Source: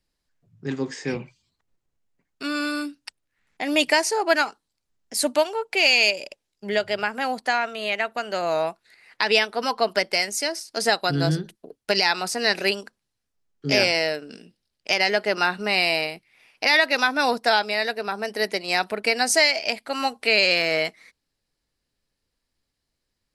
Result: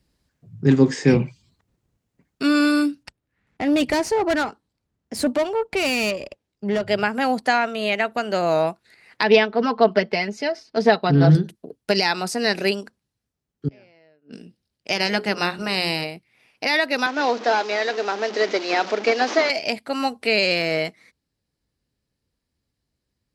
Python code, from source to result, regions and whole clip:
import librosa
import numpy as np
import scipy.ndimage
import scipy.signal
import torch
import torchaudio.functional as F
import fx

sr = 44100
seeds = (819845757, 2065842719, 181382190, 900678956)

y = fx.chain(x, sr, fx.high_shelf(hz=3900.0, db=-11.0),
    fx.tube_stage(drive_db=23.0, bias=0.45), at=(3.03, 6.87))
y = fx.chain(y, sr, fx.air_absorb(metres=240.0),
    fx.comb(ms=4.6, depth=0.58),
    fx.doppler_dist(depth_ms=0.19), at=(9.23, 11.35))
y = fx.chain(y, sr, fx.lowpass(hz=2700.0, slope=12),
    fx.gate_flip(shuts_db=-25.0, range_db=-32), at=(13.68, 14.33))
y = fx.spec_clip(y, sr, under_db=13, at=(14.94, 16.03), fade=0.02)
y = fx.hum_notches(y, sr, base_hz=60, count=8, at=(14.94, 16.03), fade=0.02)
y = fx.chain(y, sr, fx.delta_mod(bps=32000, step_db=-28.5),
    fx.highpass(hz=300.0, slope=24), at=(17.06, 19.5))
y = scipy.signal.sosfilt(scipy.signal.butter(2, 59.0, 'highpass', fs=sr, output='sos'), y)
y = fx.rider(y, sr, range_db=10, speed_s=2.0)
y = fx.low_shelf(y, sr, hz=370.0, db=11.5)